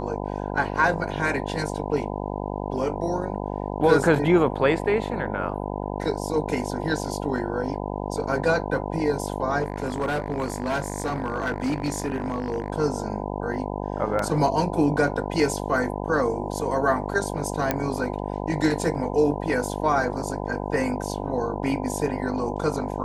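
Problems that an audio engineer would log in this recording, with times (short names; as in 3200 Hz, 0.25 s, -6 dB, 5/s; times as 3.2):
buzz 50 Hz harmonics 20 -30 dBFS
9.61–12.7 clipped -21 dBFS
14.19 gap 2.6 ms
17.71 pop -7 dBFS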